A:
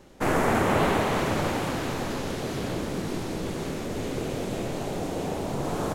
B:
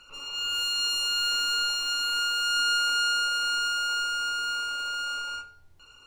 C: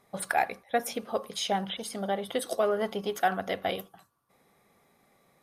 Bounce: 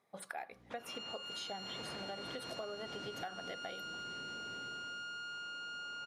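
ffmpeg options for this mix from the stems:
ffmpeg -i stem1.wav -i stem2.wav -i stem3.wav -filter_complex "[0:a]alimiter=limit=-22dB:level=0:latency=1,aeval=exprs='val(0)+0.00794*(sin(2*PI*60*n/s)+sin(2*PI*2*60*n/s)/2+sin(2*PI*3*60*n/s)/3+sin(2*PI*4*60*n/s)/4+sin(2*PI*5*60*n/s)/5)':channel_layout=same,aeval=exprs='0.0376*(abs(mod(val(0)/0.0376+3,4)-2)-1)':channel_layout=same,adelay=500,volume=-2dB,afade=type=in:start_time=1.35:duration=0.58:silence=0.237137,afade=type=out:start_time=3.36:duration=0.23:silence=0.298538,afade=type=out:start_time=4.56:duration=0.5:silence=0.281838[link_01];[1:a]aeval=exprs='(tanh(22.4*val(0)+0.25)-tanh(0.25))/22.4':channel_layout=same,alimiter=level_in=7.5dB:limit=-24dB:level=0:latency=1,volume=-7.5dB,adelay=750,volume=-1.5dB[link_02];[2:a]highpass=frequency=230:poles=1,highshelf=frequency=9600:gain=-9,volume=-10.5dB,asplit=2[link_03][link_04];[link_04]apad=whole_len=284150[link_05];[link_01][link_05]sidechaincompress=threshold=-49dB:ratio=3:attack=40:release=177[link_06];[link_06][link_02]amix=inputs=2:normalize=0,highpass=110,lowpass=5400,acompressor=threshold=-43dB:ratio=3,volume=0dB[link_07];[link_03][link_07]amix=inputs=2:normalize=0,acompressor=threshold=-40dB:ratio=6" out.wav

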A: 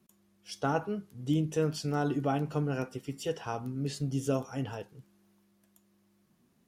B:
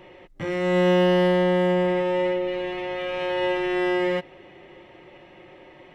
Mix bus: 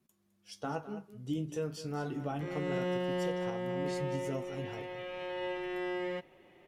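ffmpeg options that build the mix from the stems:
ffmpeg -i stem1.wav -i stem2.wav -filter_complex "[0:a]flanger=delay=7.7:depth=9.5:regen=-43:speed=0.31:shape=sinusoidal,volume=-2.5dB,asplit=2[link_01][link_02];[link_02]volume=-13.5dB[link_03];[1:a]adelay=2000,volume=-13dB[link_04];[link_03]aecho=0:1:210:1[link_05];[link_01][link_04][link_05]amix=inputs=3:normalize=0,alimiter=level_in=0.5dB:limit=-24dB:level=0:latency=1:release=381,volume=-0.5dB" out.wav

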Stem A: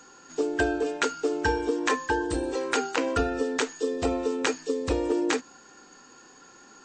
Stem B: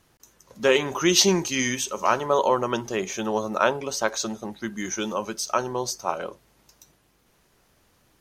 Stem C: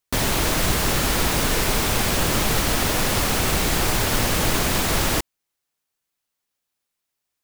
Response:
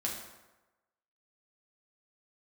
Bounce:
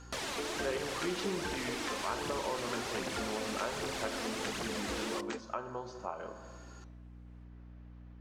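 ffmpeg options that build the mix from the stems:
-filter_complex "[0:a]acrusher=bits=9:mix=0:aa=0.000001,volume=-5dB[link_01];[1:a]lowpass=2200,aeval=exprs='val(0)+0.002*(sin(2*PI*60*n/s)+sin(2*PI*2*60*n/s)/2+sin(2*PI*3*60*n/s)/3+sin(2*PI*4*60*n/s)/4+sin(2*PI*5*60*n/s)/5)':channel_layout=same,volume=-6.5dB,asplit=2[link_02][link_03];[link_03]volume=-6dB[link_04];[2:a]highpass=frequency=340:poles=1,aphaser=in_gain=1:out_gain=1:delay=4.4:decay=0.54:speed=1.3:type=triangular,volume=-7dB,asplit=2[link_05][link_06];[link_06]volume=-19.5dB[link_07];[3:a]atrim=start_sample=2205[link_08];[link_04][link_07]amix=inputs=2:normalize=0[link_09];[link_09][link_08]afir=irnorm=-1:irlink=0[link_10];[link_01][link_02][link_05][link_10]amix=inputs=4:normalize=0,lowpass=7300,aeval=exprs='val(0)+0.00158*(sin(2*PI*60*n/s)+sin(2*PI*2*60*n/s)/2+sin(2*PI*3*60*n/s)/3+sin(2*PI*4*60*n/s)/4+sin(2*PI*5*60*n/s)/5)':channel_layout=same,acompressor=threshold=-43dB:ratio=2"

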